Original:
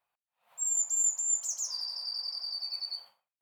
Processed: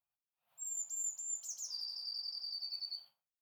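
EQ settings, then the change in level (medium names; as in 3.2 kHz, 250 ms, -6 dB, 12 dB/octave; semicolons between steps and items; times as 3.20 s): graphic EQ 250/500/1000/2000/4000/8000 Hz -5/-10/-10/-10/-4/-10 dB; dynamic bell 3.8 kHz, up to +6 dB, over -57 dBFS, Q 1.1; -2.5 dB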